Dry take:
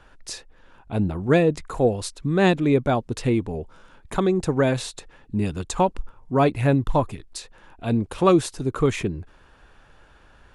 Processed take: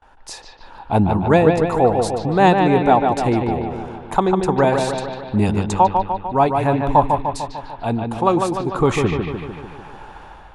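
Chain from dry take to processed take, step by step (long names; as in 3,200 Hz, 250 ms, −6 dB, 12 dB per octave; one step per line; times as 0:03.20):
parametric band 850 Hz +14.5 dB 0.6 octaves
noise gate with hold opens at −40 dBFS
automatic gain control gain up to 11 dB
on a send: bucket-brigade delay 149 ms, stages 4,096, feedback 60%, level −5 dB
on the sum: level −2 dB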